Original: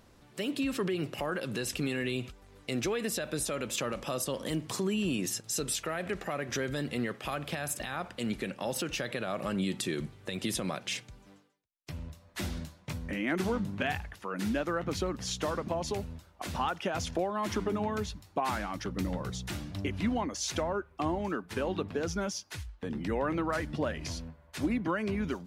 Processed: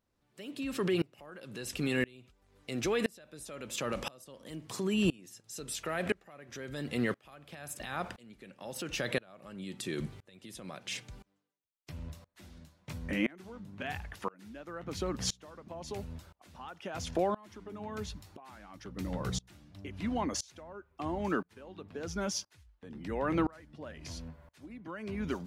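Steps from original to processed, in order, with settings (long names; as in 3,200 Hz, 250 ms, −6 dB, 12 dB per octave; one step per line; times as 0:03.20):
tremolo with a ramp in dB swelling 0.98 Hz, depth 29 dB
level +5 dB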